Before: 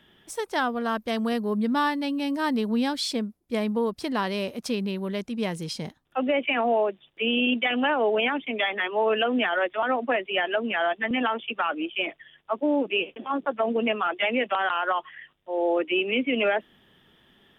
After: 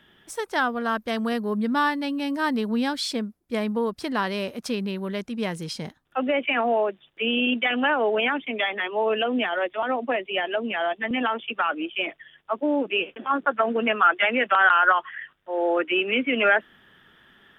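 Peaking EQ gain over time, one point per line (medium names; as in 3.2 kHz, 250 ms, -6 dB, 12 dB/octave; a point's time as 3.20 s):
peaking EQ 1.5 kHz 0.83 oct
8.40 s +4.5 dB
8.94 s -2.5 dB
10.93 s -2.5 dB
11.43 s +3.5 dB
12.78 s +3.5 dB
13.28 s +11.5 dB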